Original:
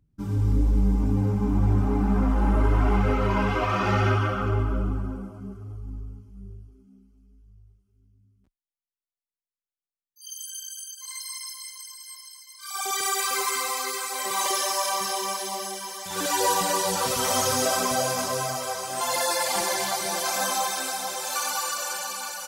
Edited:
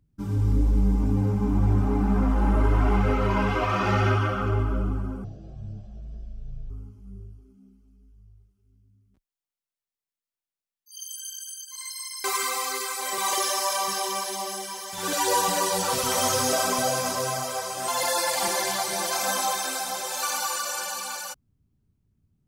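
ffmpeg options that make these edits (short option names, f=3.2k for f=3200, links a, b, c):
-filter_complex "[0:a]asplit=4[a][b][c][d];[a]atrim=end=5.244[e];[b]atrim=start=5.24:end=6,asetpts=PTS-STARTPTS,asetrate=22932,aresample=44100[f];[c]atrim=start=5.996:end=11.542[g];[d]atrim=start=13.368[h];[e][f]acrossfade=d=0.004:c1=hsin:c2=hsin[i];[i][g]acrossfade=d=0.004:c1=hsin:c2=hsin[j];[j][h]acrossfade=d=0.004:c1=hsin:c2=hsin"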